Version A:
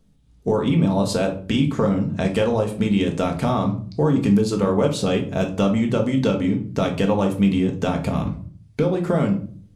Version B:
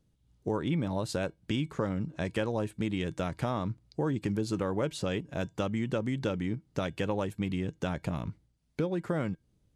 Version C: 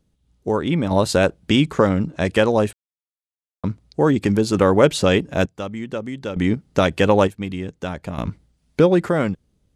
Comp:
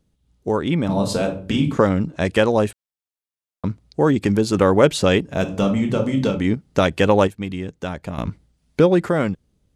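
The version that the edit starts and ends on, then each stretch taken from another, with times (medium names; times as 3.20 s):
C
0.89–1.77 s: from A
5.39–6.38 s: from A, crossfade 0.24 s
not used: B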